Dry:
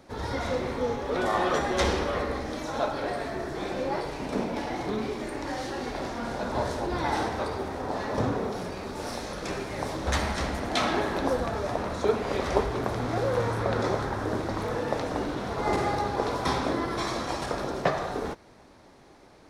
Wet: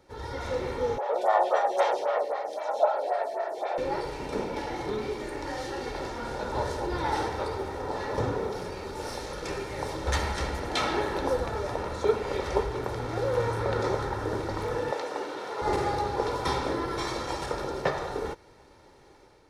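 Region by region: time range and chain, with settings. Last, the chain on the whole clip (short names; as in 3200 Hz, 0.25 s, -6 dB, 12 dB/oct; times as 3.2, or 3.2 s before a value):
0.98–3.78 resonant high-pass 660 Hz, resonance Q 6.9 + photocell phaser 3.8 Hz
14.91–15.62 HPF 390 Hz + high shelf 12000 Hz -4.5 dB
whole clip: comb 2.2 ms, depth 48%; AGC gain up to 5 dB; gain -7 dB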